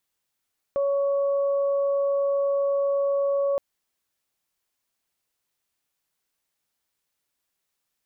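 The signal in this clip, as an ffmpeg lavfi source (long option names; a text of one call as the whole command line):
ffmpeg -f lavfi -i "aevalsrc='0.0944*sin(2*PI*559*t)+0.0158*sin(2*PI*1118*t)':duration=2.82:sample_rate=44100" out.wav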